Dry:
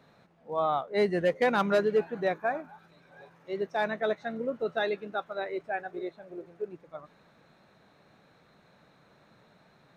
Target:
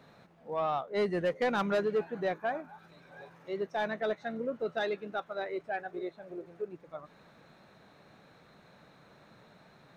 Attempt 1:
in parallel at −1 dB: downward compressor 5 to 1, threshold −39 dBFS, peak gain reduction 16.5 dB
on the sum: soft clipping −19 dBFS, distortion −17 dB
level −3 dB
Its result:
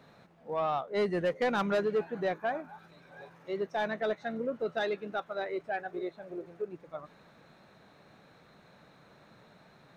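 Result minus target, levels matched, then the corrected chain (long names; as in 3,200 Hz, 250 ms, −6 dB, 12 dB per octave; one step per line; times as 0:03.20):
downward compressor: peak gain reduction −6.5 dB
in parallel at −1 dB: downward compressor 5 to 1, threshold −47 dBFS, peak gain reduction 23 dB
on the sum: soft clipping −19 dBFS, distortion −18 dB
level −3 dB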